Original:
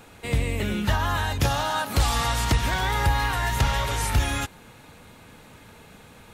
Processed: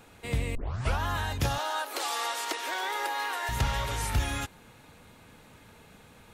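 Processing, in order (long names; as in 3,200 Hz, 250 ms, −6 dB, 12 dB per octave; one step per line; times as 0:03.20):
0:00.55: tape start 0.44 s
0:01.58–0:03.49: Butterworth high-pass 320 Hz 48 dB per octave
level −5.5 dB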